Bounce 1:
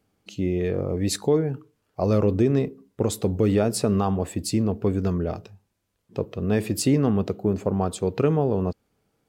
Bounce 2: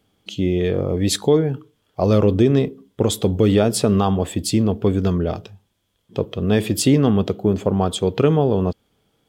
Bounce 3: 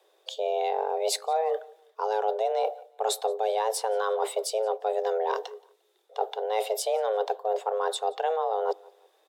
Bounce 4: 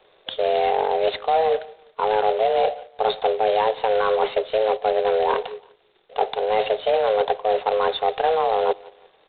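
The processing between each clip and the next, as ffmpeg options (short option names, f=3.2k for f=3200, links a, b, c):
-af "equalizer=f=3.3k:t=o:w=0.21:g=14,volume=5dB"
-filter_complex "[0:a]areverse,acompressor=threshold=-24dB:ratio=6,areverse,afreqshift=320,asplit=2[a][b];[b]adelay=175,lowpass=f=5k:p=1,volume=-24dB,asplit=2[c][d];[d]adelay=175,lowpass=f=5k:p=1,volume=0.34[e];[a][c][e]amix=inputs=3:normalize=0"
-filter_complex "[0:a]asplit=2[a][b];[b]asoftclip=type=tanh:threshold=-22.5dB,volume=-3.5dB[c];[a][c]amix=inputs=2:normalize=0,volume=3.5dB" -ar 8000 -c:a adpcm_g726 -b:a 16k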